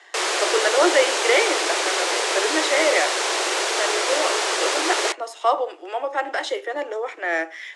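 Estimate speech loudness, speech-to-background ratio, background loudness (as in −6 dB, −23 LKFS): −24.0 LKFS, −2.5 dB, −21.5 LKFS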